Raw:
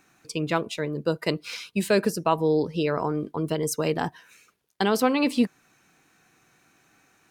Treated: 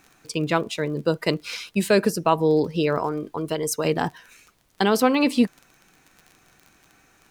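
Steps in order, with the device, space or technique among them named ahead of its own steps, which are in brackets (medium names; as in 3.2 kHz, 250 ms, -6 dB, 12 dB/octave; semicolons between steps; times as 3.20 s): 2.99–3.85 s: peaking EQ 170 Hz -6.5 dB 2 oct; vinyl LP (crackle 28 per s -38 dBFS; pink noise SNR 42 dB); trim +3 dB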